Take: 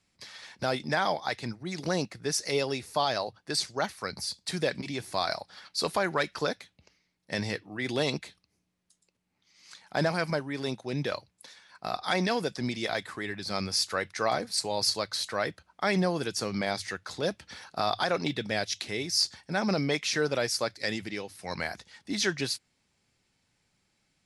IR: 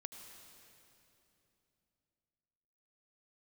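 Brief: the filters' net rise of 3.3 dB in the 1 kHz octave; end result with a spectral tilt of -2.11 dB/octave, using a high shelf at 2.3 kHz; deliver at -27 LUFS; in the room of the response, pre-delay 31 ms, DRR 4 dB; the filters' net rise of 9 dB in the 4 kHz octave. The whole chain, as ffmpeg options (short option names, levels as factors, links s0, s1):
-filter_complex "[0:a]equalizer=f=1000:t=o:g=3.5,highshelf=f=2300:g=3.5,equalizer=f=4000:t=o:g=7.5,asplit=2[s0][s1];[1:a]atrim=start_sample=2205,adelay=31[s2];[s1][s2]afir=irnorm=-1:irlink=0,volume=1[s3];[s0][s3]amix=inputs=2:normalize=0,volume=0.708"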